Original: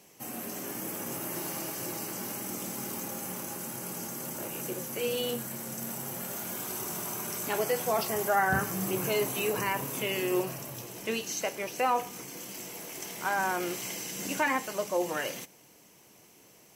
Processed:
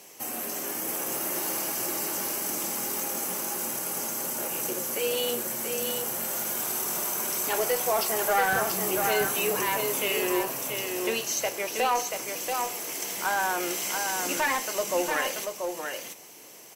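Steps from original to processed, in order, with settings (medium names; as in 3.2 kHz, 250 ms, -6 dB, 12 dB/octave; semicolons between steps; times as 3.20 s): tone controls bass -12 dB, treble +2 dB; in parallel at -1 dB: compression, threshold -42 dBFS, peak gain reduction 18.5 dB; on the sum: one-sided clip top -23 dBFS; delay 684 ms -5 dB; trim +2 dB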